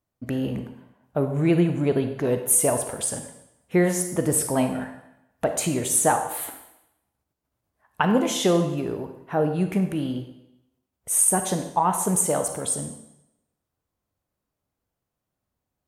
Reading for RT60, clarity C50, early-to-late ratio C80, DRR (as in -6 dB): 0.85 s, 8.5 dB, 10.5 dB, 7.0 dB